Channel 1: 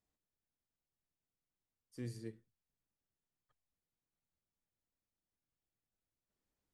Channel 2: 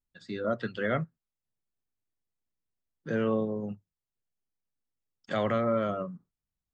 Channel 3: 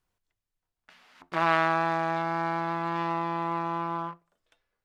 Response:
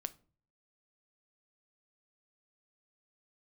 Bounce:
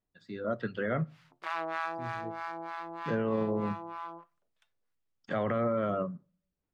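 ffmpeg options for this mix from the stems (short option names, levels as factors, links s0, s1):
-filter_complex "[0:a]lowpass=3600,aphaser=in_gain=1:out_gain=1:delay=4.7:decay=0.7:speed=0.45:type=sinusoidal,volume=0.266,asplit=2[s0][s1];[s1]volume=0.596[s2];[1:a]dynaudnorm=f=250:g=5:m=2.51,lowpass=f=3500:p=1,acrossover=split=2600[s3][s4];[s4]acompressor=threshold=0.00447:ratio=4:attack=1:release=60[s5];[s3][s5]amix=inputs=2:normalize=0,volume=0.398,asplit=2[s6][s7];[s7]volume=0.398[s8];[2:a]highpass=340,acrossover=split=770[s9][s10];[s9]aeval=exprs='val(0)*(1-1/2+1/2*cos(2*PI*3.2*n/s))':c=same[s11];[s10]aeval=exprs='val(0)*(1-1/2-1/2*cos(2*PI*3.2*n/s))':c=same[s12];[s11][s12]amix=inputs=2:normalize=0,adelay=100,volume=0.562,asplit=2[s13][s14];[s14]volume=0.178[s15];[3:a]atrim=start_sample=2205[s16];[s2][s8][s15]amix=inputs=3:normalize=0[s17];[s17][s16]afir=irnorm=-1:irlink=0[s18];[s0][s6][s13][s18]amix=inputs=4:normalize=0,alimiter=limit=0.0841:level=0:latency=1:release=44"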